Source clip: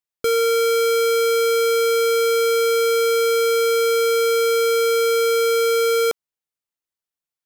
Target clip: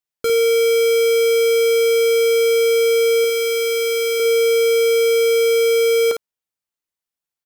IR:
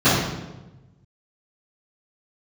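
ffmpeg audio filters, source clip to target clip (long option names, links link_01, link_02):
-filter_complex "[0:a]asettb=1/sr,asplit=3[link_01][link_02][link_03];[link_01]atrim=end=3.244[link_04];[link_02]atrim=start=3.24:end=4.2,asetpts=PTS-STARTPTS,afade=type=in:duration=0.004:curve=qsin,afade=type=out:start_time=0.956:duration=0.004:curve=qsin,lowshelf=frequency=480:gain=-9.5[link_05];[link_03]atrim=start=4.196[link_06];[link_04][link_05]acrossfade=duration=0.004:curve1=hsin:curve2=qsin[link_07];[link_07][link_06]acrossfade=duration=0.004:curve1=qsin:curve2=hsin,aecho=1:1:17|54:0.188|0.501"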